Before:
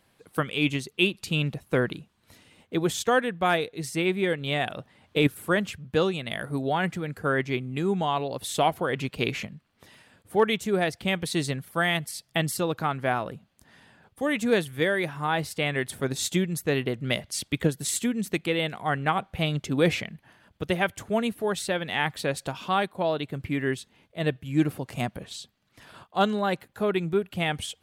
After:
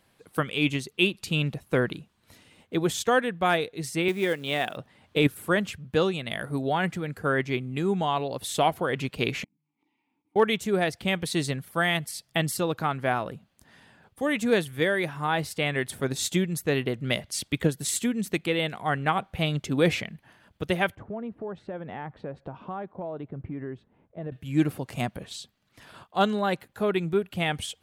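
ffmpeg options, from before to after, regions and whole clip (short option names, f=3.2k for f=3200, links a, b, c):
-filter_complex "[0:a]asettb=1/sr,asplit=3[a][b][c];[a]atrim=end=4.084[d];[b]atrim=start=4.08:end=4.77,asetpts=PTS-STARTPTS,afade=t=in:d=0.004:c=qsin,afade=t=out:st=0.686:d=0.004:c=qsin,acrusher=bits=6:mode=log:mix=0:aa=0.000001,highpass=190[e];[c]atrim=start=4.766[f];[d][e]acrossfade=d=0.004:c1=hsin:c2=qsin[g];[g][f]acrossfade=d=0.004:c1=qsin:c2=hsin,asettb=1/sr,asplit=3[h][i][j];[h]atrim=end=9.444[k];[i]atrim=start=9.44:end=10.36,asetpts=PTS-STARTPTS,afade=t=in:d=0.004:c=qsin,afade=t=out:st=0.916:d=0.004:c=qsin,bandreject=f=50:t=h:w=6,bandreject=f=100:t=h:w=6,bandreject=f=150:t=h:w=6,acompressor=threshold=-58dB:ratio=4:attack=3.2:release=140:knee=1:detection=peak,asplit=3[l][m][n];[l]bandpass=f=300:t=q:w=8,volume=0dB[o];[m]bandpass=f=870:t=q:w=8,volume=-6dB[p];[n]bandpass=f=2.24k:t=q:w=8,volume=-9dB[q];[o][p][q]amix=inputs=3:normalize=0[r];[j]atrim=start=10.356[s];[k][r]acrossfade=d=0.004:c1=hsin:c2=qsin[t];[t][s]acrossfade=d=0.004:c1=qsin:c2=hsin,asettb=1/sr,asplit=3[u][v][w];[u]atrim=end=20.954[x];[v]atrim=start=20.95:end=24.32,asetpts=PTS-STARTPTS,afade=t=in:d=0.004:c=qsin,afade=t=out:st=3.366:d=0.004:c=qsin,lowpass=1k,acompressor=threshold=-32dB:ratio=4:attack=3.2:release=140:knee=1:detection=peak[y];[w]atrim=start=24.316[z];[x][y]acrossfade=d=0.004:c1=hsin:c2=qsin[aa];[aa][z]acrossfade=d=0.004:c1=qsin:c2=hsin"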